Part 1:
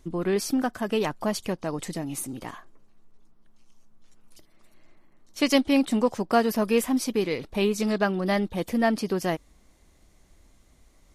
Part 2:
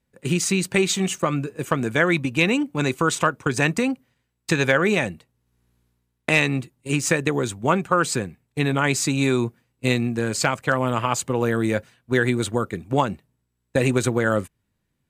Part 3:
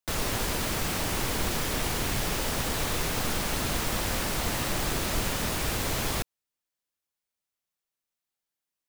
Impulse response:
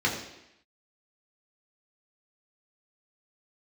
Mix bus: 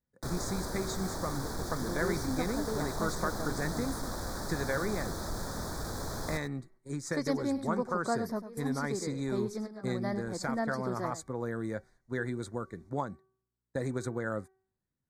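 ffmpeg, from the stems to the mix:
-filter_complex "[0:a]adelay=1750,volume=-10.5dB,asplit=2[a][b];[b]volume=-12dB[c];[1:a]bandreject=f=380.1:t=h:w=4,bandreject=f=760.2:t=h:w=4,bandreject=f=1.1403k:t=h:w=4,bandreject=f=1.5204k:t=h:w=4,bandreject=f=1.9005k:t=h:w=4,bandreject=f=2.2806k:t=h:w=4,bandreject=f=2.6607k:t=h:w=4,volume=-13.5dB,asplit=2[d][e];[2:a]equalizer=f=2.1k:t=o:w=0.28:g=-13,asoftclip=type=tanh:threshold=-23dB,adelay=150,volume=-5dB,asplit=2[f][g];[g]volume=-13dB[h];[e]apad=whole_len=568638[i];[a][i]sidechaingate=range=-18dB:threshold=-58dB:ratio=16:detection=peak[j];[c][h]amix=inputs=2:normalize=0,aecho=0:1:100:1[k];[j][d][f][k]amix=inputs=4:normalize=0,asuperstop=centerf=2800:order=4:qfactor=1.4,highshelf=f=9.1k:g=-10.5"

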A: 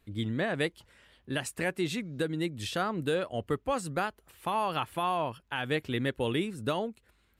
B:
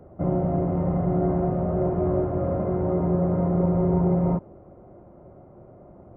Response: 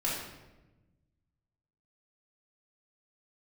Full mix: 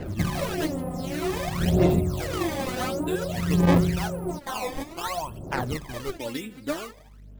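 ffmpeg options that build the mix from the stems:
-filter_complex "[0:a]aeval=exprs='val(0)+0.00251*(sin(2*PI*50*n/s)+sin(2*PI*2*50*n/s)/2+sin(2*PI*3*50*n/s)/3+sin(2*PI*4*50*n/s)/4+sin(2*PI*5*50*n/s)/5)':c=same,volume=-5.5dB,asplit=2[a][b];[b]volume=-20.5dB[c];[1:a]equalizer=f=580:w=1.5:g=-3,acompressor=threshold=-30dB:ratio=10,volume=3dB[d];[2:a]atrim=start_sample=2205[e];[c][e]afir=irnorm=-1:irlink=0[f];[a][d][f]amix=inputs=3:normalize=0,acrusher=samples=18:mix=1:aa=0.000001:lfo=1:lforange=28.8:lforate=0.89,aphaser=in_gain=1:out_gain=1:delay=4:decay=0.74:speed=0.54:type=sinusoidal"

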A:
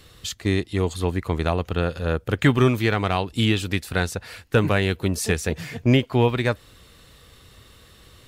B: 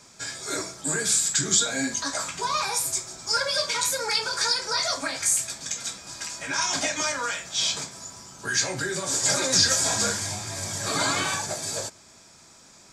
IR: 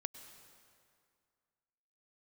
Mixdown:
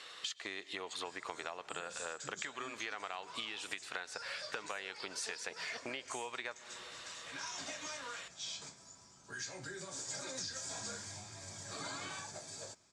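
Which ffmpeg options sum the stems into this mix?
-filter_complex "[0:a]highshelf=f=5.2k:g=-7,acompressor=threshold=-24dB:ratio=6,highpass=820,volume=1.5dB,asplit=2[a][b];[b]volume=-4dB[c];[1:a]adelay=850,volume=-16.5dB[d];[2:a]atrim=start_sample=2205[e];[c][e]afir=irnorm=-1:irlink=0[f];[a][d][f]amix=inputs=3:normalize=0,lowpass=f=8.7k:w=0.5412,lowpass=f=8.7k:w=1.3066,acompressor=threshold=-39dB:ratio=6"

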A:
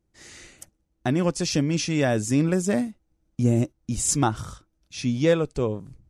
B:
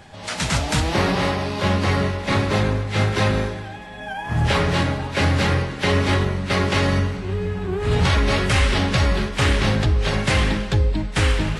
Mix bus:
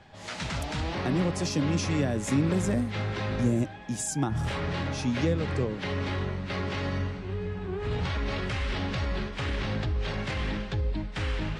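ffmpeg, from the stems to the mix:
-filter_complex "[0:a]highpass=f=120:w=0.5412,highpass=f=120:w=1.3066,volume=-3dB[a];[1:a]alimiter=limit=-13.5dB:level=0:latency=1:release=17,lowpass=5.2k,volume=-8.5dB[b];[a][b]amix=inputs=2:normalize=0,acrossover=split=310[c][d];[d]acompressor=threshold=-30dB:ratio=6[e];[c][e]amix=inputs=2:normalize=0"

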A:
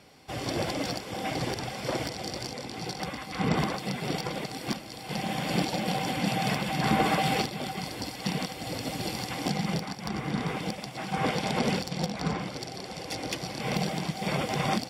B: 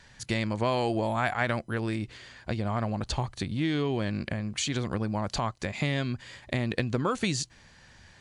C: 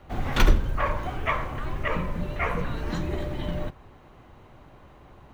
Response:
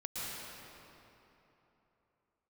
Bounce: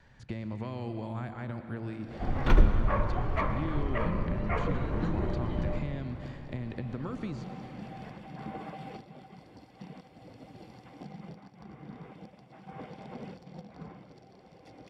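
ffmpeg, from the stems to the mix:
-filter_complex "[0:a]adelay=1550,volume=-15dB,asplit=2[a][b];[b]volume=-20.5dB[c];[1:a]acrossover=split=320|1200|4600[d][e][f][g];[d]acompressor=threshold=-34dB:ratio=4[h];[e]acompressor=threshold=-45dB:ratio=4[i];[f]acompressor=threshold=-42dB:ratio=4[j];[g]acompressor=threshold=-53dB:ratio=4[k];[h][i][j][k]amix=inputs=4:normalize=0,volume=-3dB,asplit=3[l][m][n];[m]volume=-8dB[o];[2:a]adelay=2100,volume=-3dB,asplit=2[p][q];[q]volume=-9.5dB[r];[n]apad=whole_len=725320[s];[a][s]sidechaincompress=threshold=-42dB:ratio=8:attack=16:release=144[t];[3:a]atrim=start_sample=2205[u];[c][o][r]amix=inputs=3:normalize=0[v];[v][u]afir=irnorm=-1:irlink=0[w];[t][l][p][w]amix=inputs=4:normalize=0,lowpass=f=1k:p=1"

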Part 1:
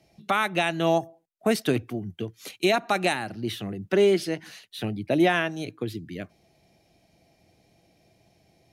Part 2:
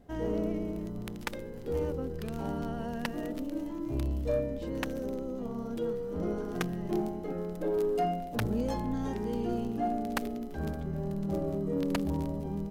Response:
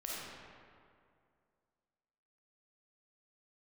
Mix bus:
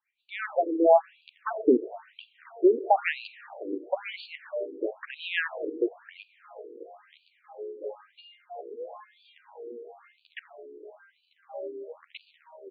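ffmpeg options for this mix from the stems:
-filter_complex "[0:a]lowpass=f=1.4k:p=1,acrossover=split=540[a][b];[a]aeval=exprs='val(0)*(1-0.5/2+0.5/2*cos(2*PI*7*n/s))':c=same[c];[b]aeval=exprs='val(0)*(1-0.5/2-0.5/2*cos(2*PI*7*n/s))':c=same[d];[c][d]amix=inputs=2:normalize=0,dynaudnorm=f=140:g=7:m=11dB,volume=-2.5dB,asplit=2[e][f];[f]volume=-15dB[g];[1:a]highpass=f=360:w=0.5412,highpass=f=360:w=1.3066,asplit=2[h][i];[i]adelay=11.8,afreqshift=0.68[j];[h][j]amix=inputs=2:normalize=1,adelay=200,volume=1.5dB,asplit=2[k][l];[l]volume=-16.5dB[m];[2:a]atrim=start_sample=2205[n];[g][m]amix=inputs=2:normalize=0[o];[o][n]afir=irnorm=-1:irlink=0[p];[e][k][p]amix=inputs=3:normalize=0,afftfilt=real='re*between(b*sr/1024,360*pow(3400/360,0.5+0.5*sin(2*PI*1*pts/sr))/1.41,360*pow(3400/360,0.5+0.5*sin(2*PI*1*pts/sr))*1.41)':imag='im*between(b*sr/1024,360*pow(3400/360,0.5+0.5*sin(2*PI*1*pts/sr))/1.41,360*pow(3400/360,0.5+0.5*sin(2*PI*1*pts/sr))*1.41)':win_size=1024:overlap=0.75"

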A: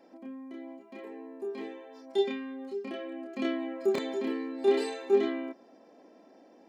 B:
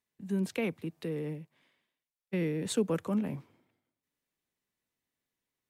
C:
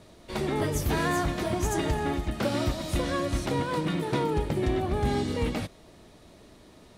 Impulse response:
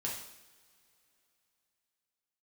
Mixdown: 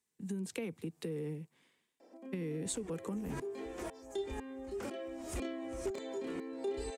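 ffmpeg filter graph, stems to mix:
-filter_complex "[0:a]adelay=2000,volume=-6.5dB[a];[1:a]equalizer=f=150:w=0.92:g=6,volume=-2dB[b];[2:a]acompressor=threshold=-31dB:ratio=3,equalizer=f=160:t=o:w=0.67:g=-10,equalizer=f=4k:t=o:w=0.67:g=-11,equalizer=f=10k:t=o:w=0.67:g=-5,aeval=exprs='val(0)*pow(10,-40*if(lt(mod(-2*n/s,1),2*abs(-2)/1000),1-mod(-2*n/s,1)/(2*abs(-2)/1000),(mod(-2*n/s,1)-2*abs(-2)/1000)/(1-2*abs(-2)/1000))/20)':c=same,adelay=2400,volume=-1dB[c];[b][c]amix=inputs=2:normalize=0,equalizer=f=600:w=5.3:g=-11.5,acompressor=threshold=-31dB:ratio=6,volume=0dB[d];[a][d]amix=inputs=2:normalize=0,equalizer=f=125:t=o:w=1:g=-5,equalizer=f=500:t=o:w=1:g=6,equalizer=f=8k:t=o:w=1:g=11,acrossover=split=120[e][f];[f]acompressor=threshold=-38dB:ratio=3[g];[e][g]amix=inputs=2:normalize=0"

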